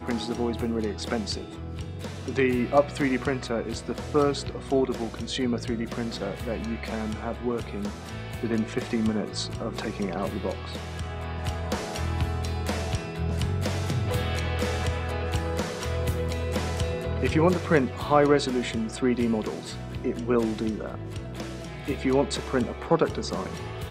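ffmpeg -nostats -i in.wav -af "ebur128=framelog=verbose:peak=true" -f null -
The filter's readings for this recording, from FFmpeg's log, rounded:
Integrated loudness:
  I:         -28.1 LUFS
  Threshold: -38.1 LUFS
Loudness range:
  LRA:         6.0 LU
  Threshold: -48.0 LUFS
  LRA low:   -30.9 LUFS
  LRA high:  -24.9 LUFS
True peak:
  Peak:       -6.3 dBFS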